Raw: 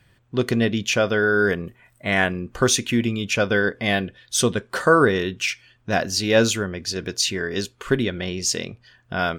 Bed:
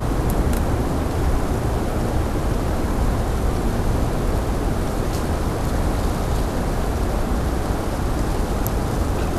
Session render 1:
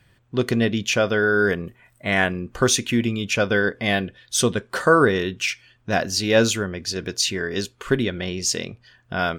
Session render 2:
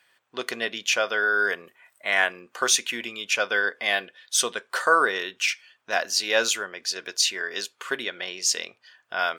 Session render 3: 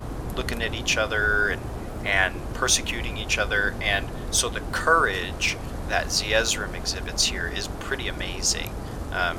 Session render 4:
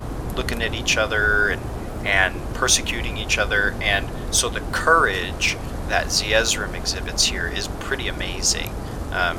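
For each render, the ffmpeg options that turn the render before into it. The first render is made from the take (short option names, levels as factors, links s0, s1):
-af anull
-af "highpass=740"
-filter_complex "[1:a]volume=0.266[s0];[0:a][s0]amix=inputs=2:normalize=0"
-af "volume=1.5,alimiter=limit=0.708:level=0:latency=1"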